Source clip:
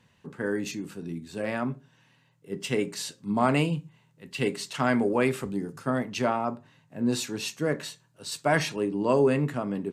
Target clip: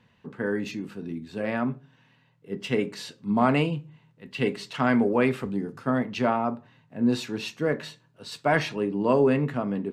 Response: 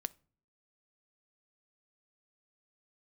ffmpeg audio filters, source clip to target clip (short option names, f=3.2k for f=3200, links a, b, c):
-filter_complex "[0:a]asplit=2[a][b];[1:a]atrim=start_sample=2205,lowpass=4.6k[c];[b][c]afir=irnorm=-1:irlink=0,volume=7.5dB[d];[a][d]amix=inputs=2:normalize=0,volume=-8dB"